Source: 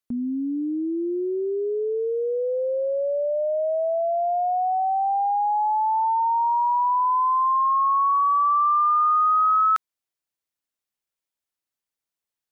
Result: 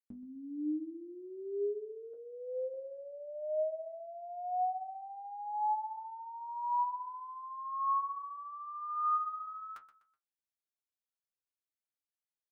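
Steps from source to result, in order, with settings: 2.13–2.74 dynamic EQ 530 Hz, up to -5 dB, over -40 dBFS, Q 3.9; compressor, threshold -22 dBFS, peak gain reduction 5 dB; metallic resonator 100 Hz, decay 0.23 s, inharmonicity 0.002; feedback echo 0.125 s, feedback 37%, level -15 dB; gain -5 dB

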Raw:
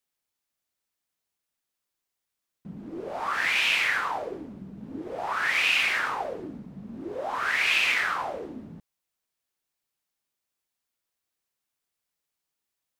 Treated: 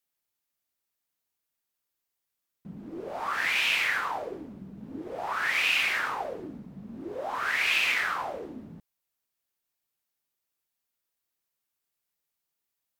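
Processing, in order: bell 15000 Hz +7.5 dB 0.42 oct; gain -2 dB

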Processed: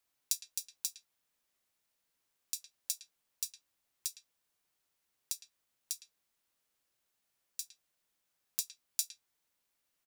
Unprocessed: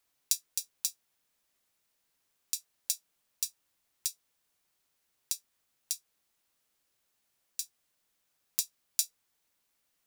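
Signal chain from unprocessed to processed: speakerphone echo 0.11 s, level -7 dB; gain -4.5 dB

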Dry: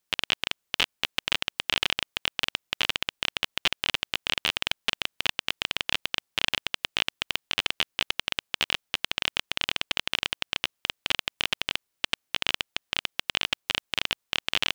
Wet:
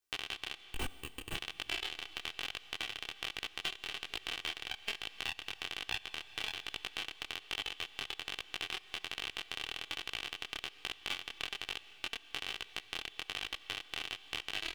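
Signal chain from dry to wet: spectral noise reduction 7 dB; 0.61–1.35 Schmitt trigger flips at -36 dBFS; comb 2.6 ms, depth 59%; Schroeder reverb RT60 2.5 s, combs from 29 ms, DRR 17.5 dB; compressor 5:1, threshold -33 dBFS, peak gain reduction 13.5 dB; detuned doubles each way 41 cents; gain +3 dB

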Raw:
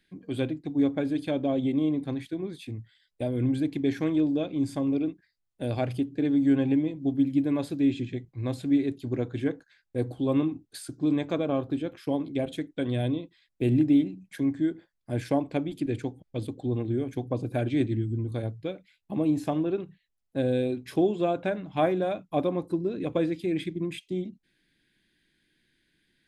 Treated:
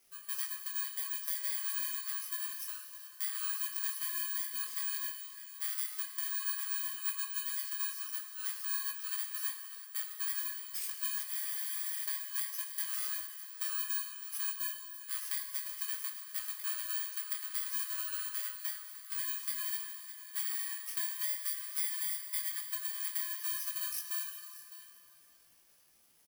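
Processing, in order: FFT order left unsorted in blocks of 32 samples; elliptic high-pass 1200 Hz, stop band 70 dB; high shelf 4800 Hz +11 dB; compressor 5:1, threshold -29 dBFS, peak gain reduction 15.5 dB; bit-crush 10-bit; echo 0.608 s -14.5 dB; plate-style reverb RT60 3.1 s, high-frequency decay 0.85×, DRR 5.5 dB; spectral freeze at 11.31, 0.72 s; detuned doubles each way 19 cents

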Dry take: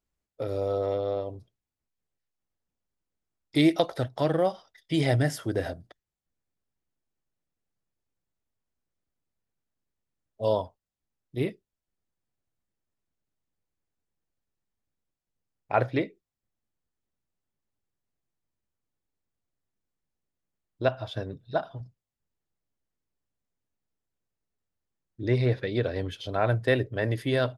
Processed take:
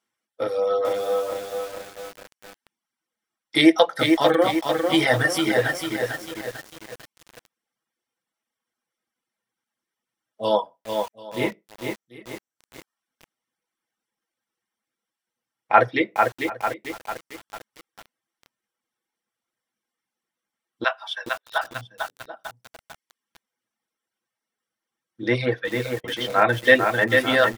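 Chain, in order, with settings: LPF 9500 Hz 12 dB/oct; tilt +4 dB/oct; echo 0.739 s -19 dB; reverb RT60 0.25 s, pre-delay 3 ms, DRR 2.5 dB; 25.44–26.04 fade out; reverb removal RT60 1 s; 20.84–21.64 HPF 830 Hz 24 dB/oct; lo-fi delay 0.447 s, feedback 55%, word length 6-bit, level -4 dB; gain -1 dB

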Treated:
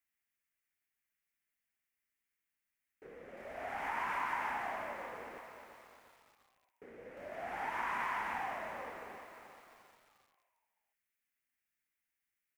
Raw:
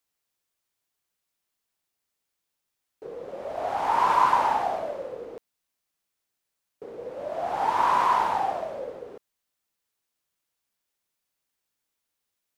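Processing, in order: bell 240 Hz +9.5 dB 0.48 oct; compressor 2.5:1, threshold -24 dBFS, peak gain reduction 6.5 dB; ten-band EQ 125 Hz -5 dB, 250 Hz -7 dB, 500 Hz -8 dB, 1000 Hz -8 dB, 2000 Hz +12 dB, 4000 Hz -12 dB, 8000 Hz -3 dB; on a send: frequency-shifting echo 0.437 s, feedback 43%, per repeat +100 Hz, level -14 dB; on the sum: lo-fi delay 0.352 s, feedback 55%, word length 9-bit, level -8.5 dB; gain -5.5 dB

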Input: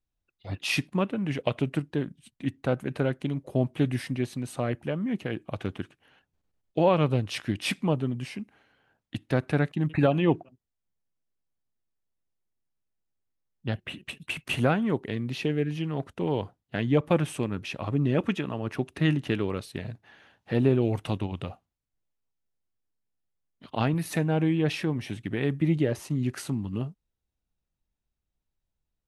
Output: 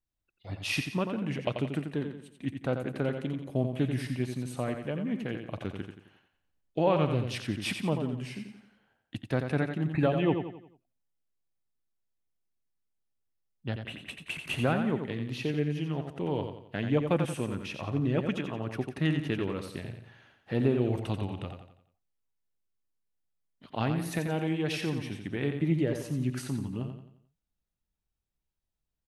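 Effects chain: 24.18–24.81 tilt +1.5 dB/oct; on a send: feedback echo 88 ms, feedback 42%, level -7 dB; on the sum: gain -4 dB

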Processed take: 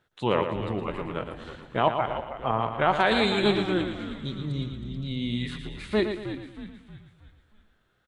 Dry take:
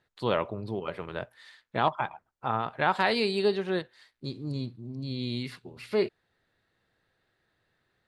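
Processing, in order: frequency-shifting echo 0.317 s, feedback 50%, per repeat -86 Hz, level -11 dB; formant shift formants -2 st; feedback echo 0.115 s, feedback 37%, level -8 dB; gain +2.5 dB

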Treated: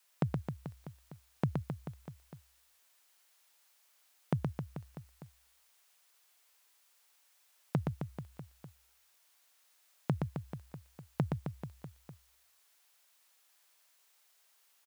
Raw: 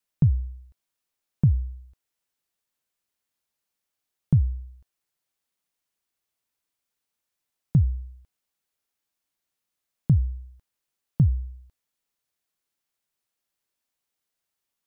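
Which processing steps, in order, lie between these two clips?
HPF 650 Hz 12 dB/oct; reverse bouncing-ball echo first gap 0.12 s, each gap 1.2×, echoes 5; gain +12.5 dB

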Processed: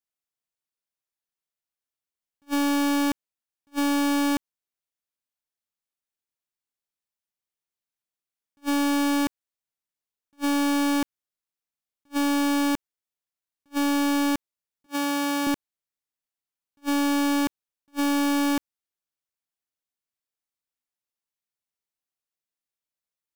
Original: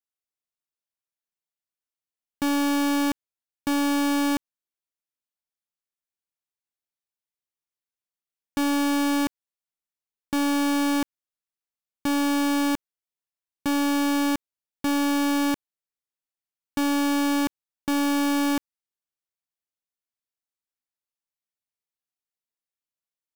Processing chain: 14.86–15.47 HPF 320 Hz 12 dB/oct; attack slew limiter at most 550 dB/s

